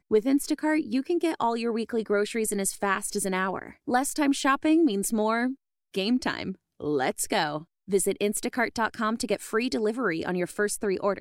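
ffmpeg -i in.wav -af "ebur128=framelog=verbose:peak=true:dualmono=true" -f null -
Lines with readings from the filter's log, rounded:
Integrated loudness:
  I:         -23.8 LUFS
  Threshold: -33.9 LUFS
Loudness range:
  LRA:         2.4 LU
  Threshold: -43.9 LUFS
  LRA low:   -25.1 LUFS
  LRA high:  -22.7 LUFS
True peak:
  Peak:      -10.6 dBFS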